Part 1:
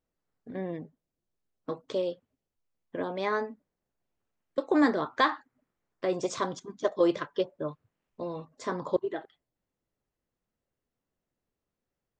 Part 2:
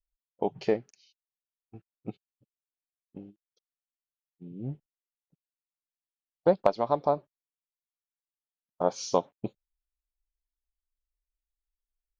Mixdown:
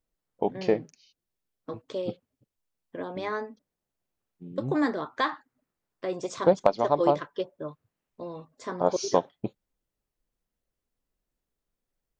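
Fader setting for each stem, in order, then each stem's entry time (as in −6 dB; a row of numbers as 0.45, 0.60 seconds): −2.5, +2.0 decibels; 0.00, 0.00 seconds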